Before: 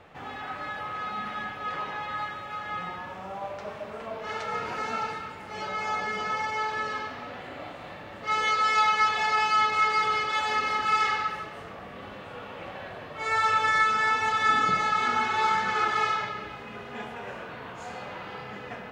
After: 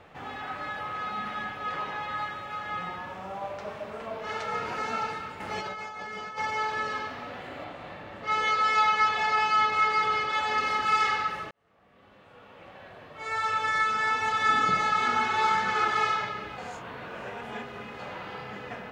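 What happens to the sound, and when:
5.40–6.38 s: compressor with a negative ratio -37 dBFS
7.64–10.58 s: treble shelf 5.9 kHz -8 dB
11.51–14.78 s: fade in
16.58–17.99 s: reverse

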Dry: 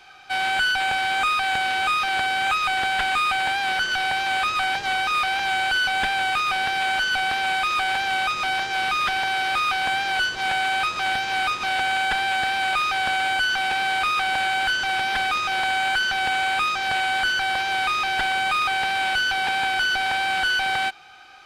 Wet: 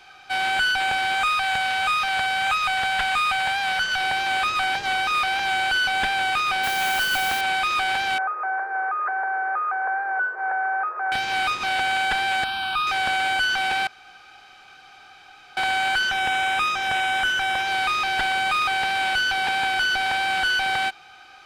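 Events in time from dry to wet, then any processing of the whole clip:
1.15–4.01 s: peaking EQ 330 Hz -14 dB 0.47 oct
6.63–7.41 s: modulation noise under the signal 11 dB
8.18–11.12 s: elliptic band-pass 410–1600 Hz
12.44–12.87 s: static phaser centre 2 kHz, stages 6
13.87–15.57 s: room tone
16.09–17.67 s: Butterworth band-stop 4.4 kHz, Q 5.8

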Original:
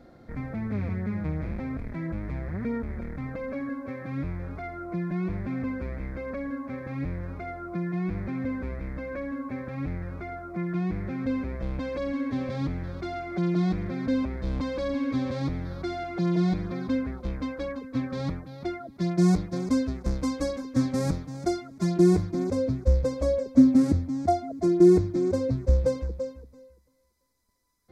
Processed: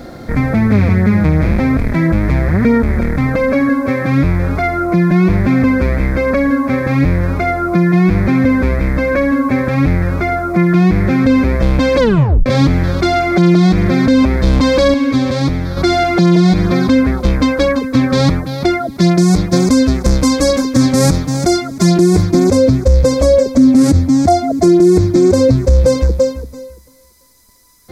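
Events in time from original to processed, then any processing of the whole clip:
11.98 s: tape stop 0.48 s
14.94–15.77 s: gain -6 dB
whole clip: compression 1.5:1, threshold -30 dBFS; treble shelf 3.7 kHz +9 dB; loudness maximiser +21.5 dB; trim -1 dB

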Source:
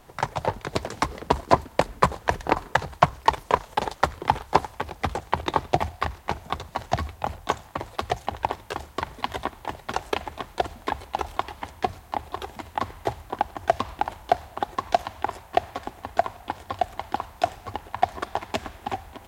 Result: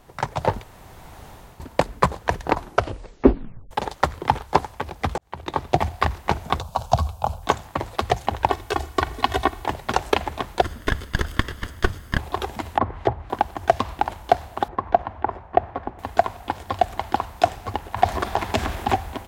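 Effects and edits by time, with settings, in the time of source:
0.64–1.60 s: room tone
2.52 s: tape stop 1.19 s
5.18–6.03 s: fade in
6.60–7.43 s: static phaser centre 800 Hz, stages 4
8.48–9.66 s: comb 2.7 ms, depth 59%
10.62–12.18 s: comb filter that takes the minimum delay 0.61 ms
12.71–13.30 s: low-pass that closes with the level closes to 1.3 kHz, closed at -26.5 dBFS
14.68–15.99 s: low-pass 1.5 kHz
17.88–18.93 s: transient shaper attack -2 dB, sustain +6 dB
whole clip: bass shelf 380 Hz +3 dB; level rider; trim -1 dB

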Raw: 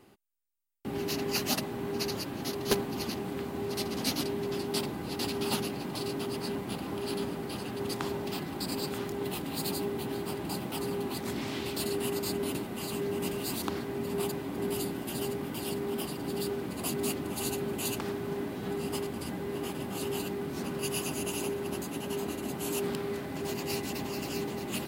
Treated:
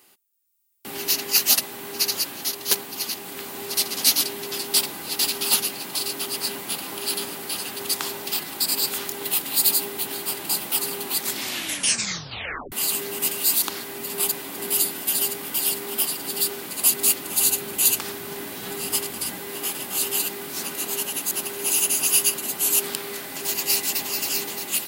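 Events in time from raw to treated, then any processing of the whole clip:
11.41 s: tape stop 1.31 s
17.30–19.40 s: bass shelf 120 Hz +9 dB
20.75–22.38 s: reverse
whole clip: tilt EQ +4.5 dB/octave; level rider gain up to 4.5 dB

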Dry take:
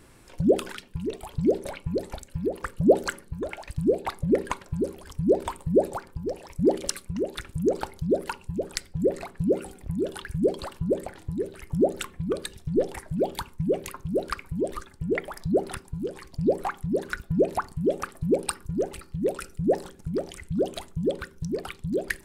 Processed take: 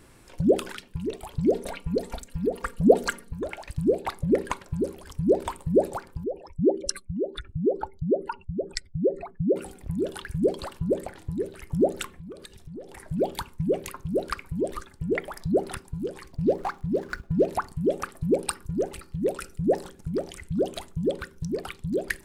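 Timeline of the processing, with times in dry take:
1.52–3.33 s: comb 4.3 ms, depth 63%
6.24–9.56 s: spectral contrast enhancement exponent 2
12.18–13.00 s: compression 3:1, threshold -42 dBFS
16.32–17.48 s: median filter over 15 samples

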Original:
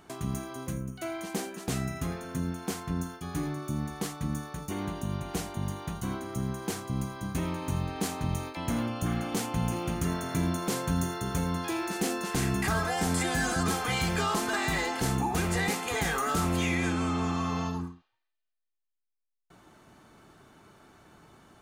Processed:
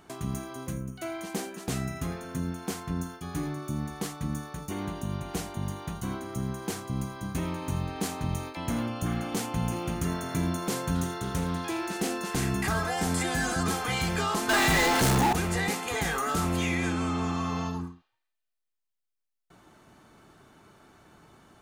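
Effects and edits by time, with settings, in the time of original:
10.95–12.18 s: loudspeaker Doppler distortion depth 0.2 ms
14.49–15.33 s: power-law waveshaper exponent 0.35

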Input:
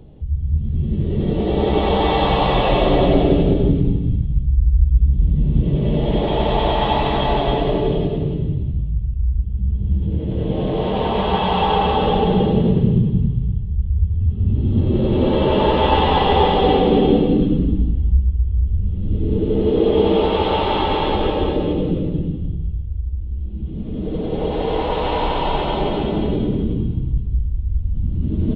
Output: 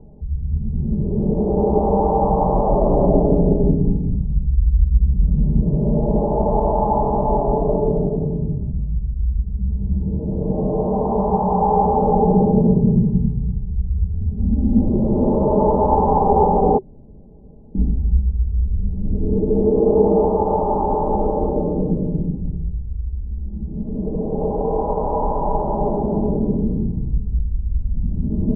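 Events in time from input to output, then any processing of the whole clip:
14.39–14.89 s: comb 3.8 ms, depth 90%
16.78–17.75 s: room tone
whole clip: elliptic low-pass 940 Hz, stop band 60 dB; band-stop 380 Hz, Q 12; comb 4.9 ms, depth 48%

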